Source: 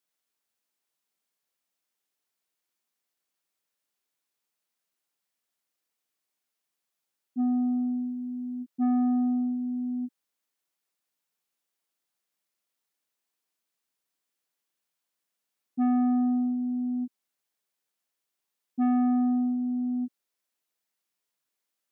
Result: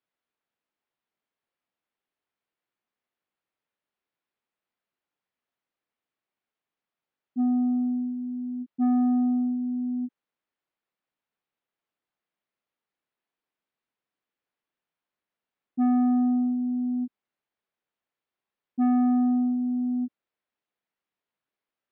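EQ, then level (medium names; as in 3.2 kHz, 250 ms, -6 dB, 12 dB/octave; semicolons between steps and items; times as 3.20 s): distance through air 350 m; +2.5 dB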